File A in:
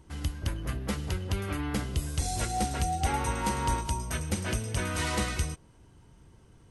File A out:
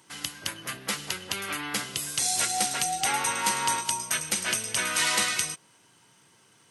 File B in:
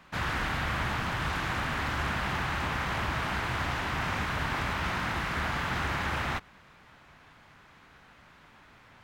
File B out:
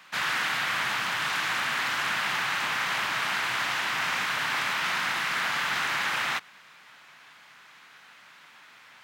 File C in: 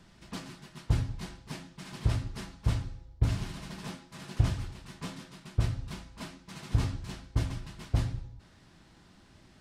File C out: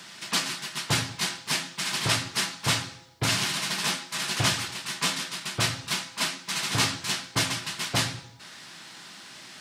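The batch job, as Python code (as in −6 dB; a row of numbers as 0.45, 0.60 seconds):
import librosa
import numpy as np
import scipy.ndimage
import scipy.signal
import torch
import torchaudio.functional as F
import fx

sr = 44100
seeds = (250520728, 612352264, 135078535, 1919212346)

y = scipy.signal.sosfilt(scipy.signal.butter(4, 130.0, 'highpass', fs=sr, output='sos'), x)
y = fx.tilt_shelf(y, sr, db=-9.5, hz=810.0)
y = y * 10.0 ** (-30 / 20.0) / np.sqrt(np.mean(np.square(y)))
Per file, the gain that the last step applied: +1.5, −0.5, +12.0 decibels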